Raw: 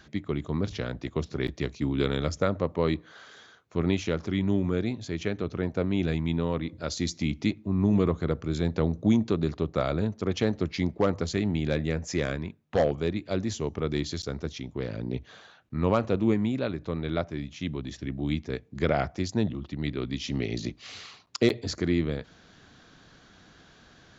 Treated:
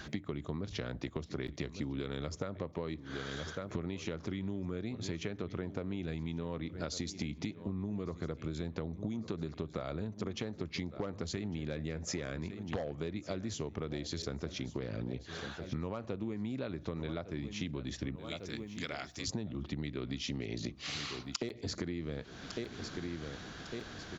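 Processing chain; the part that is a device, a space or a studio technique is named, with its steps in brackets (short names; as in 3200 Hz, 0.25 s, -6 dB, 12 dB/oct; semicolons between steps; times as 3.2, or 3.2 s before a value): 18.16–19.28 differentiator; feedback echo 1.153 s, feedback 42%, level -19.5 dB; serial compression, leveller first (compressor 3:1, threshold -29 dBFS, peak gain reduction 10 dB; compressor 6:1, threshold -43 dBFS, peak gain reduction 17 dB); gain +7.5 dB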